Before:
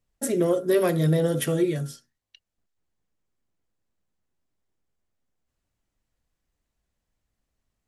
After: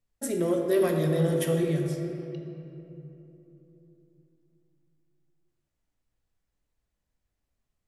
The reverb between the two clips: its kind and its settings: shoebox room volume 150 m³, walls hard, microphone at 0.33 m; gain -5 dB

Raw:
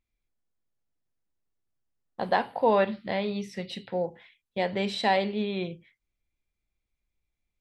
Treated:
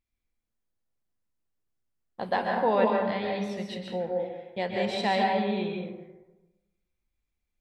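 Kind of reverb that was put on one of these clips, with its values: plate-style reverb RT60 1.1 s, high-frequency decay 0.4×, pre-delay 0.115 s, DRR 0 dB; gain -3 dB

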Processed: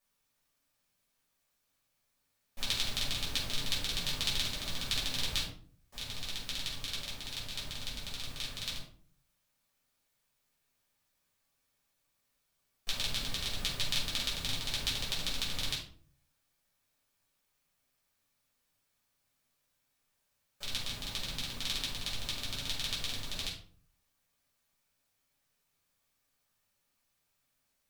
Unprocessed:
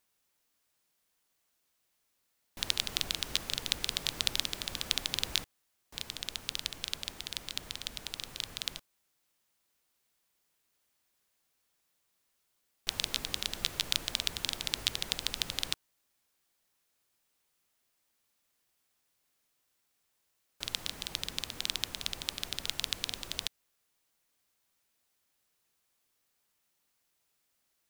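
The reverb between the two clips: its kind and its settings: shoebox room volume 400 m³, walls furnished, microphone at 6 m; gain -9 dB

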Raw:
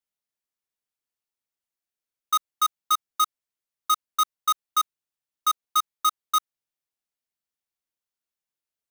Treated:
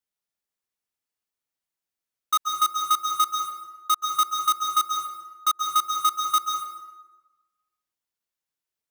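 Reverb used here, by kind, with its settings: plate-style reverb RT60 1.2 s, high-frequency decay 0.65×, pre-delay 0.12 s, DRR 4 dB

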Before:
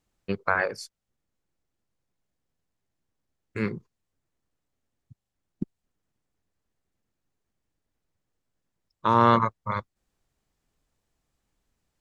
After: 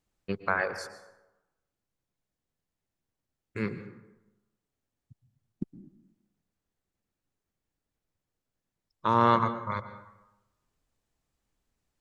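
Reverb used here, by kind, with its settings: plate-style reverb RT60 1 s, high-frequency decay 0.55×, pre-delay 0.105 s, DRR 12 dB; gain -3.5 dB

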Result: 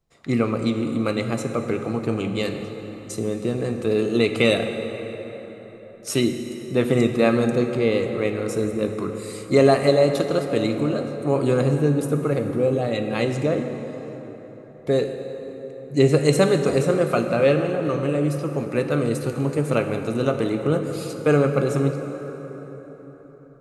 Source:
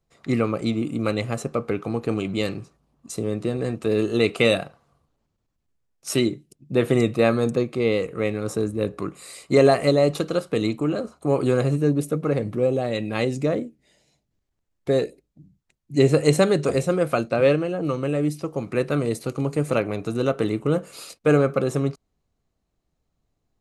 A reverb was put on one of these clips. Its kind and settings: plate-style reverb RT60 4.6 s, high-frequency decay 0.55×, DRR 5.5 dB

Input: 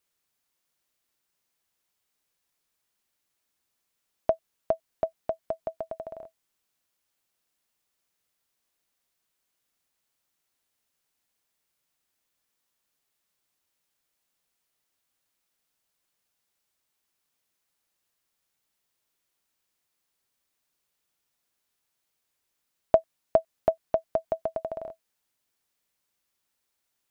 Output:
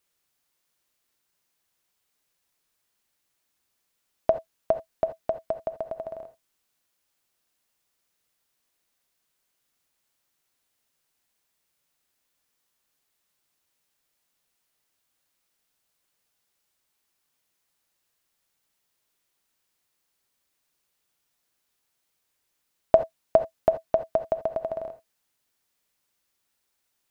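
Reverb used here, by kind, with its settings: non-linear reverb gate 0.1 s rising, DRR 10 dB; gain +2.5 dB

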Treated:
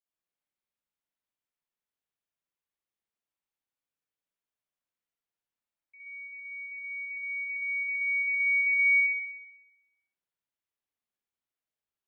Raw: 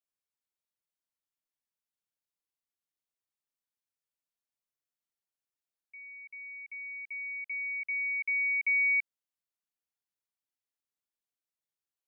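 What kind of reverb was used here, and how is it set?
spring tank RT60 1 s, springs 57 ms, chirp 75 ms, DRR -7 dB; gain -6 dB

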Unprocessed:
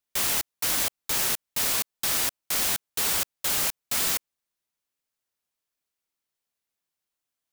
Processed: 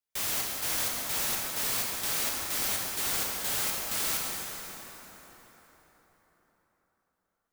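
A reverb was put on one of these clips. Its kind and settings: plate-style reverb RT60 4.7 s, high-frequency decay 0.6×, DRR -3 dB; gain -7.5 dB

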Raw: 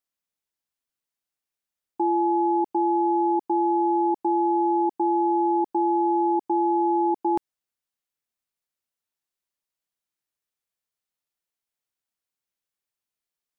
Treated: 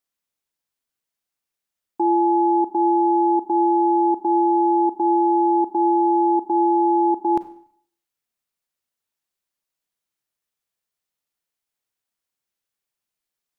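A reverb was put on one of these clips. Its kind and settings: Schroeder reverb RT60 0.59 s, combs from 32 ms, DRR 12 dB; gain +3 dB

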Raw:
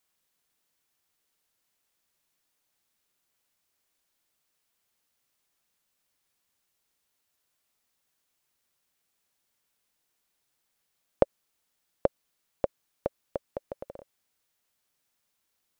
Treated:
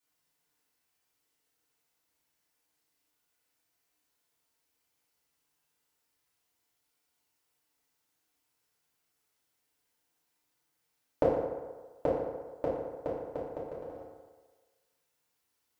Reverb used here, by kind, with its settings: FDN reverb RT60 1.4 s, low-frequency decay 0.75×, high-frequency decay 0.55×, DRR -9 dB; gain -9.5 dB

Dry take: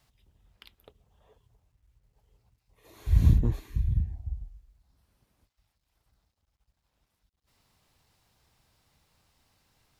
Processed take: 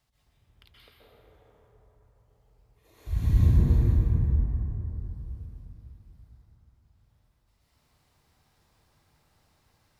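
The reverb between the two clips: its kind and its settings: plate-style reverb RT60 3.9 s, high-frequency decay 0.35×, pre-delay 0.115 s, DRR -9 dB; gain -7 dB

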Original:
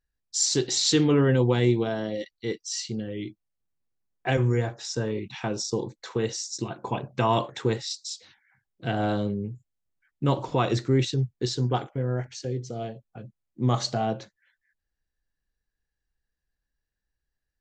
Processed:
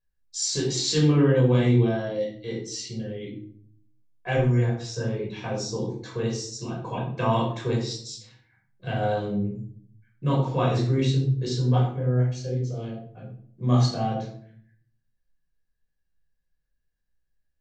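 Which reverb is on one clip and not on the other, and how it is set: shoebox room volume 750 m³, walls furnished, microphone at 5.4 m; gain -8.5 dB

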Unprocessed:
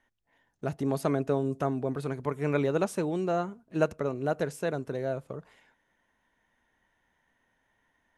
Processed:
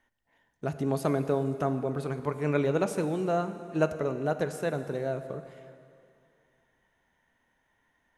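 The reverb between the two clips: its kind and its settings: plate-style reverb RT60 2.5 s, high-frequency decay 0.9×, pre-delay 0 ms, DRR 9.5 dB

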